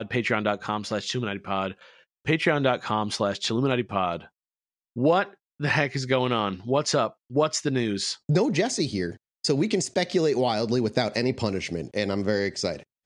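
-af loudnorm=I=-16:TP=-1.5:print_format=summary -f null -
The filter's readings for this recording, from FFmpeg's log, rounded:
Input Integrated:    -25.9 LUFS
Input True Peak:      -6.8 dBTP
Input LRA:             1.7 LU
Input Threshold:     -36.0 LUFS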